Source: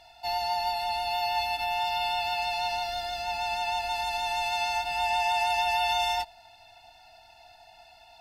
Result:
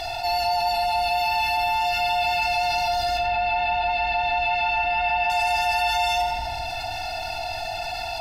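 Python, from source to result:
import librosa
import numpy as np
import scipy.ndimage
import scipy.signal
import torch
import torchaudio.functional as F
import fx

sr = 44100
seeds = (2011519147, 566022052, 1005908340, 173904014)

y = fx.lowpass(x, sr, hz=3600.0, slope=24, at=(3.17, 5.3))
y = fx.room_shoebox(y, sr, seeds[0], volume_m3=3300.0, walls='furnished', distance_m=3.5)
y = fx.env_flatten(y, sr, amount_pct=70)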